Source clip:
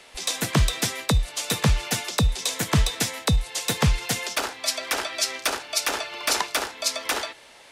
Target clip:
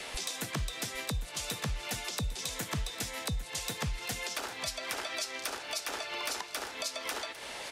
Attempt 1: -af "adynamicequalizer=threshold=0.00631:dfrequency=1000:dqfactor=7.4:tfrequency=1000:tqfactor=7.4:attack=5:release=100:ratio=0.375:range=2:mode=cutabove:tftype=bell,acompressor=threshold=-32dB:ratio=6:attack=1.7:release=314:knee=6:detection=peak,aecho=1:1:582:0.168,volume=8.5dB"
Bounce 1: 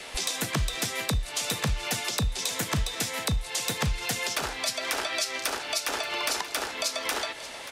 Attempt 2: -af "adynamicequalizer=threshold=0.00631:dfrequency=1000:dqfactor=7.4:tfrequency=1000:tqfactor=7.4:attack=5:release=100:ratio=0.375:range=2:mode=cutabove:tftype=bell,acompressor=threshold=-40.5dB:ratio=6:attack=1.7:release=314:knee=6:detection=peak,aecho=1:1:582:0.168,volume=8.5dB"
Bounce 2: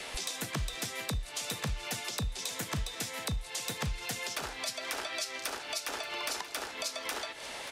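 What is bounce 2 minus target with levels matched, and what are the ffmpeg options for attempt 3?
echo 0.22 s early
-af "adynamicequalizer=threshold=0.00631:dfrequency=1000:dqfactor=7.4:tfrequency=1000:tqfactor=7.4:attack=5:release=100:ratio=0.375:range=2:mode=cutabove:tftype=bell,acompressor=threshold=-40.5dB:ratio=6:attack=1.7:release=314:knee=6:detection=peak,aecho=1:1:802:0.168,volume=8.5dB"

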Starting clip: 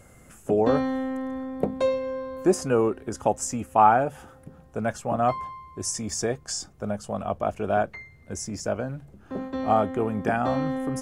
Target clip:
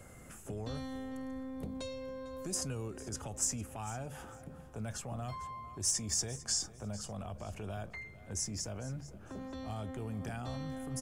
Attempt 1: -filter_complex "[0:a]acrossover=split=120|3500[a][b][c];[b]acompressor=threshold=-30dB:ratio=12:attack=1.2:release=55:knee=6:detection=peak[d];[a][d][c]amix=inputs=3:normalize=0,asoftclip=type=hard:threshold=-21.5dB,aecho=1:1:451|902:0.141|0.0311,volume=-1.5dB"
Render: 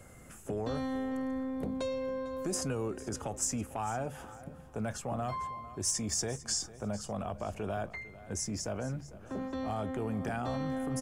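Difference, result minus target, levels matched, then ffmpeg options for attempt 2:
compressor: peak gain reduction -8.5 dB
-filter_complex "[0:a]acrossover=split=120|3500[a][b][c];[b]acompressor=threshold=-39.5dB:ratio=12:attack=1.2:release=55:knee=6:detection=peak[d];[a][d][c]amix=inputs=3:normalize=0,asoftclip=type=hard:threshold=-21.5dB,aecho=1:1:451|902:0.141|0.0311,volume=-1.5dB"

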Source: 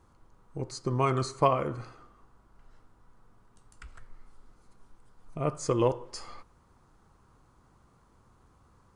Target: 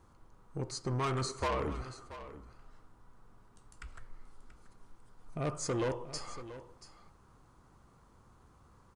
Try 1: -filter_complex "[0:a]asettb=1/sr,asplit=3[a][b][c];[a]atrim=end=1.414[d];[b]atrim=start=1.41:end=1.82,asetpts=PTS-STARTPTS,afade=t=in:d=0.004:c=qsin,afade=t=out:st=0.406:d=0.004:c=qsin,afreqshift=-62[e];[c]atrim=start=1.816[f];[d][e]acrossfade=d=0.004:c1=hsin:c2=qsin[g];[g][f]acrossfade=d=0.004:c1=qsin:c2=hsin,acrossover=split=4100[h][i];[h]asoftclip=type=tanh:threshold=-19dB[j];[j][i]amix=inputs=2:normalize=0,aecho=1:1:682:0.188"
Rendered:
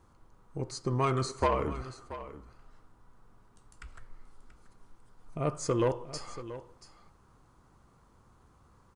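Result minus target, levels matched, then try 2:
soft clip: distortion -8 dB
-filter_complex "[0:a]asettb=1/sr,asplit=3[a][b][c];[a]atrim=end=1.414[d];[b]atrim=start=1.41:end=1.82,asetpts=PTS-STARTPTS,afade=t=in:d=0.004:c=qsin,afade=t=out:st=0.406:d=0.004:c=qsin,afreqshift=-62[e];[c]atrim=start=1.816[f];[d][e]acrossfade=d=0.004:c1=hsin:c2=qsin[g];[g][f]acrossfade=d=0.004:c1=qsin:c2=hsin,acrossover=split=4100[h][i];[h]asoftclip=type=tanh:threshold=-29dB[j];[j][i]amix=inputs=2:normalize=0,aecho=1:1:682:0.188"

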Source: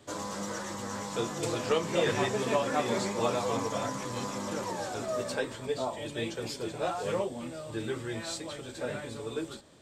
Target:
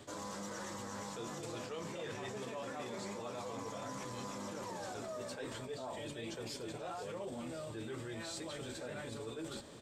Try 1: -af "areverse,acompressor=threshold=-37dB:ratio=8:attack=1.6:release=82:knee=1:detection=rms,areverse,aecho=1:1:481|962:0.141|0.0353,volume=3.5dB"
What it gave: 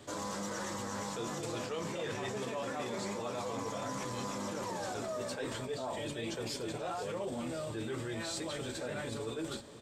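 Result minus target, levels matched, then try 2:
compressor: peak gain reduction -5 dB
-af "areverse,acompressor=threshold=-43dB:ratio=8:attack=1.6:release=82:knee=1:detection=rms,areverse,aecho=1:1:481|962:0.141|0.0353,volume=3.5dB"

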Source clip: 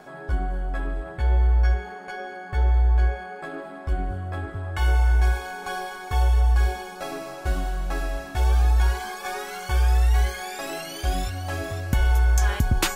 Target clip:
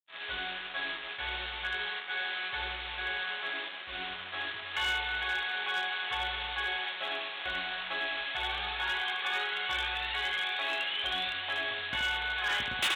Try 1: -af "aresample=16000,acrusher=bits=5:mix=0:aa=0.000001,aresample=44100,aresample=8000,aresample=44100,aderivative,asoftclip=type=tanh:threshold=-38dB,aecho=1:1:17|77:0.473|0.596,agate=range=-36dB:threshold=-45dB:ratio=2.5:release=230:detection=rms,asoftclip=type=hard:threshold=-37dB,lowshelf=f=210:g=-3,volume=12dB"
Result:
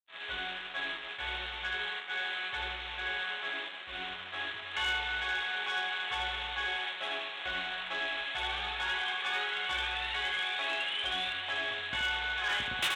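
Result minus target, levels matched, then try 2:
soft clip: distortion +12 dB
-af "aresample=16000,acrusher=bits=5:mix=0:aa=0.000001,aresample=44100,aresample=8000,aresample=44100,aderivative,asoftclip=type=tanh:threshold=-26.5dB,aecho=1:1:17|77:0.473|0.596,agate=range=-36dB:threshold=-45dB:ratio=2.5:release=230:detection=rms,asoftclip=type=hard:threshold=-37dB,lowshelf=f=210:g=-3,volume=12dB"

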